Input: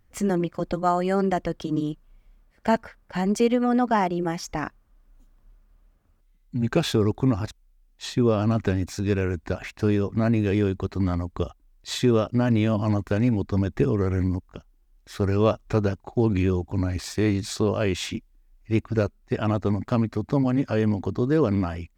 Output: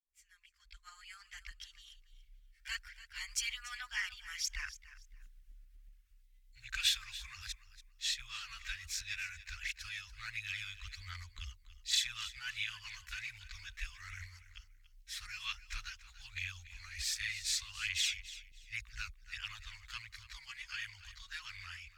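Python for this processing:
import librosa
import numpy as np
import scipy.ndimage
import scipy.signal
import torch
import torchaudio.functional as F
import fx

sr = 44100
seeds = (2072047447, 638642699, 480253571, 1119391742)

y = fx.fade_in_head(x, sr, length_s=3.37)
y = scipy.signal.sosfilt(scipy.signal.cheby2(4, 70, [160.0, 580.0], 'bandstop', fs=sr, output='sos'), y)
y = fx.tremolo_shape(y, sr, shape='saw_up', hz=8.0, depth_pct=30)
y = fx.chorus_voices(y, sr, voices=2, hz=0.67, base_ms=15, depth_ms=2.5, mix_pct=70)
y = fx.echo_feedback(y, sr, ms=286, feedback_pct=22, wet_db=-15.5)
y = F.gain(torch.from_numpy(y), 3.5).numpy()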